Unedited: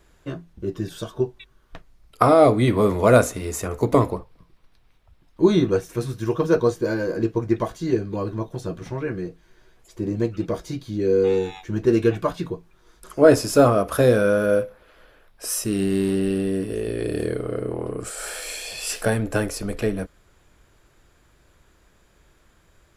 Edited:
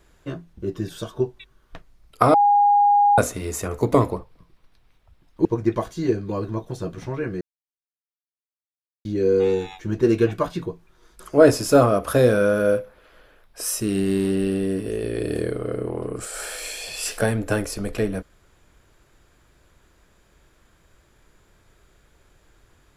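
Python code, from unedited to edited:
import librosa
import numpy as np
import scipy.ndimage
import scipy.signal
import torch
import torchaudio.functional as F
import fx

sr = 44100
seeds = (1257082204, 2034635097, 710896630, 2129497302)

y = fx.edit(x, sr, fx.bleep(start_s=2.34, length_s=0.84, hz=818.0, db=-12.5),
    fx.cut(start_s=5.45, length_s=1.84),
    fx.silence(start_s=9.25, length_s=1.64), tone=tone)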